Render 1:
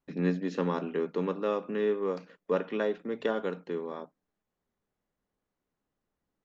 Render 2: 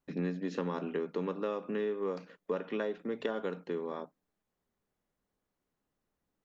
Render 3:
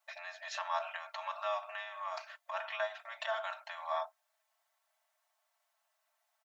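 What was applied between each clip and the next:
downward compressor, threshold −30 dBFS, peak gain reduction 8.5 dB
comb filter 4.5 ms, depth 89%; brickwall limiter −26.5 dBFS, peak gain reduction 9 dB; linear-phase brick-wall high-pass 570 Hz; level +6.5 dB

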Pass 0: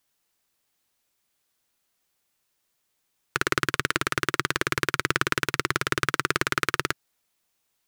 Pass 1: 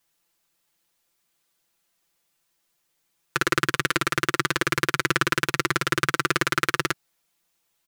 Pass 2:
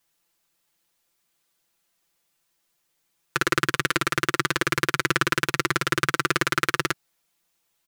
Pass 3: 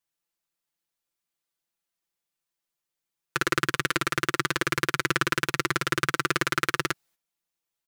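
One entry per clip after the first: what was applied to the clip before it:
comb filter 5.9 ms, depth 77%
no processing that can be heard
noise gate −56 dBFS, range −11 dB; level −2.5 dB

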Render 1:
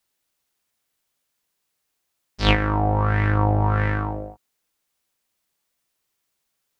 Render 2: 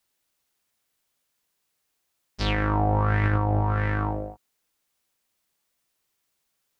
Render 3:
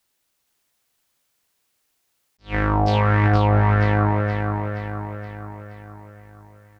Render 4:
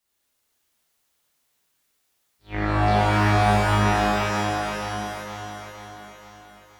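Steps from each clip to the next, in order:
brickwall limiter −14 dBFS, peak gain reduction 11.5 dB
on a send: repeating echo 472 ms, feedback 53%, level −5 dB; on the sum: level that may rise only so fast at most 280 dB per second; level +4 dB
reverb with rising layers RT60 2.5 s, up +12 semitones, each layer −8 dB, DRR −7.5 dB; level −8.5 dB

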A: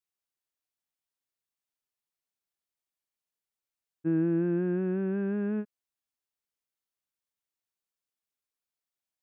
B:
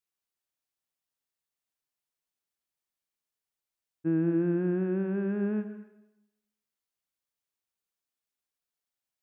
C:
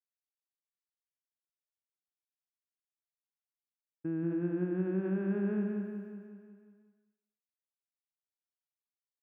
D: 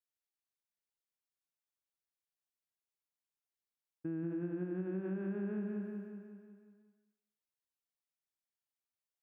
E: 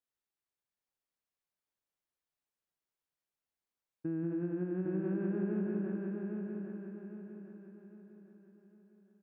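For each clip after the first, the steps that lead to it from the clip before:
dense smooth reverb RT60 0.89 s, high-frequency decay 1×, pre-delay 115 ms, DRR 10.5 dB
downward expander −60 dBFS; brickwall limiter −28 dBFS, peak gain reduction 9.5 dB; repeating echo 183 ms, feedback 57%, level −6 dB
downward compressor, threshold −32 dBFS, peak gain reduction 5.5 dB; level −2.5 dB
high-shelf EQ 2,500 Hz −8.5 dB; on a send: repeating echo 804 ms, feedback 40%, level −4.5 dB; on the sum: level +3 dB

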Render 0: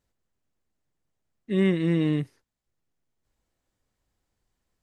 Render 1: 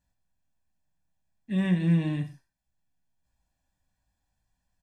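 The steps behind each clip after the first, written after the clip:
comb filter 1.2 ms, depth 81%
reverb whose tail is shaped and stops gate 160 ms falling, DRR 4.5 dB
level −5 dB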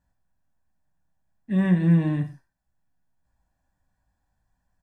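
high shelf with overshoot 2,000 Hz −7 dB, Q 1.5
level +4.5 dB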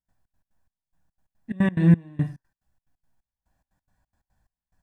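gate pattern ".xx.x.xx...xx.x" 178 BPM −24 dB
level +3.5 dB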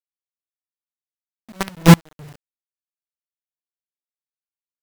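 log-companded quantiser 2 bits
expander for the loud parts 1.5 to 1, over −25 dBFS
level −1 dB

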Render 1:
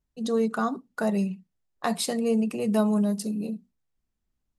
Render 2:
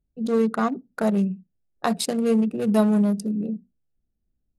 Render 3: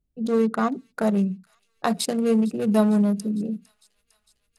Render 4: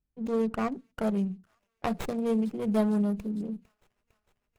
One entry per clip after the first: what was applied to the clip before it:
adaptive Wiener filter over 41 samples; level +4.5 dB
delay with a high-pass on its return 454 ms, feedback 68%, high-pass 2,900 Hz, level −20.5 dB
windowed peak hold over 9 samples; level −6.5 dB

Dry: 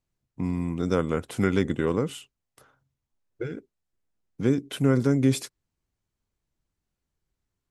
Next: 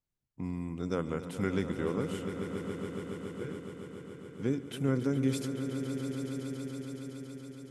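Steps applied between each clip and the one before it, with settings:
echo that builds up and dies away 140 ms, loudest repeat 5, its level −12 dB
level −8.5 dB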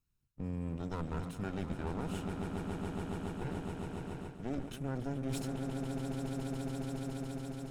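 lower of the sound and its delayed copy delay 0.75 ms
low-shelf EQ 150 Hz +8.5 dB
reversed playback
downward compressor 6 to 1, threshold −38 dBFS, peak gain reduction 14 dB
reversed playback
level +3.5 dB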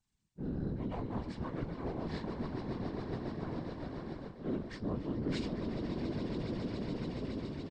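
partials spread apart or drawn together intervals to 80%
double-tracking delay 22 ms −13.5 dB
random phases in short frames
level +2 dB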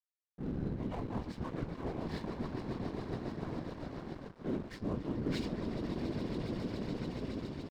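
dead-zone distortion −52 dBFS
level +1 dB

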